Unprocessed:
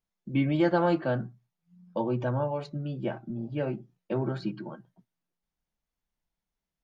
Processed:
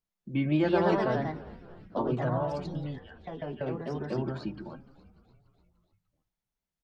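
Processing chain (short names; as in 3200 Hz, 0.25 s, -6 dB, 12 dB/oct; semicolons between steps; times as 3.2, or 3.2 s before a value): 2.98–3.61 double band-pass 2300 Hz, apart 0.85 oct; on a send: frequency-shifting echo 0.294 s, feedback 61%, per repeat -61 Hz, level -19.5 dB; on the sum: echoes that change speed 0.204 s, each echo +2 st, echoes 2; gain -3 dB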